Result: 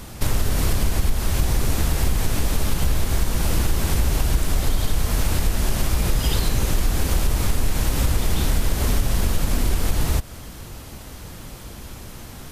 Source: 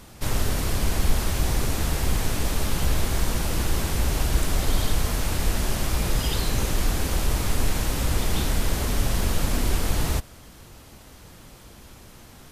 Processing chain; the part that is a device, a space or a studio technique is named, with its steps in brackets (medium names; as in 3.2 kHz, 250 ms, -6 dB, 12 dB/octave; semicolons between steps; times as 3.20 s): ASMR close-microphone chain (bass shelf 170 Hz +4 dB; compression 4:1, threshold -23 dBFS, peak gain reduction 12.5 dB; treble shelf 12 kHz +4 dB); trim +7 dB